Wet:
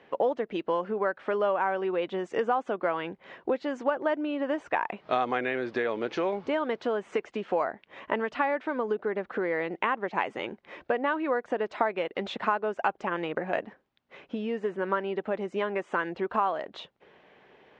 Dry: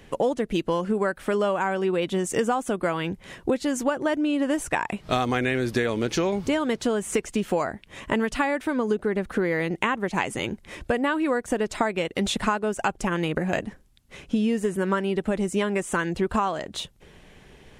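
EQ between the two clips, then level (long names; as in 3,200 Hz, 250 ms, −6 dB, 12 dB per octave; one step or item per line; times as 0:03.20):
band-pass filter 640–4,700 Hz
high-frequency loss of the air 95 metres
spectral tilt −3.5 dB per octave
0.0 dB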